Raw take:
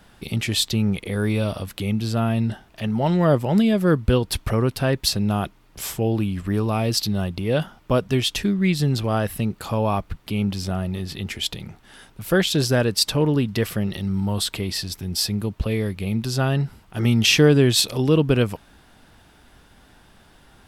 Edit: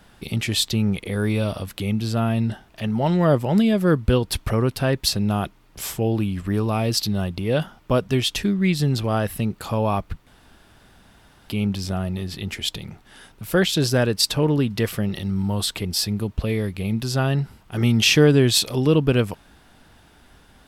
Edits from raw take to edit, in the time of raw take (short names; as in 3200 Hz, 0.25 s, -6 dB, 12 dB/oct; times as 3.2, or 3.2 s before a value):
10.27 insert room tone 1.22 s
14.63–15.07 cut